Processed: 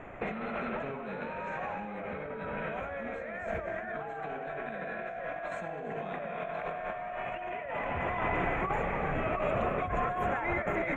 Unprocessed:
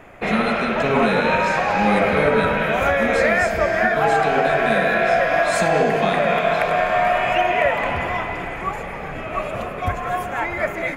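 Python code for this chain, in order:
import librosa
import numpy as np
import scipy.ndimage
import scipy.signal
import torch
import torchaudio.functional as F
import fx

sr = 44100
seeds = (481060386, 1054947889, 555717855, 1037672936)

y = fx.over_compress(x, sr, threshold_db=-27.0, ratio=-1.0)
y = scipy.signal.lfilter(np.full(9, 1.0 / 9), 1.0, y)
y = y + 10.0 ** (-22.0 / 20.0) * np.pad(y, (int(330 * sr / 1000.0), 0))[:len(y)]
y = y * librosa.db_to_amplitude(-8.0)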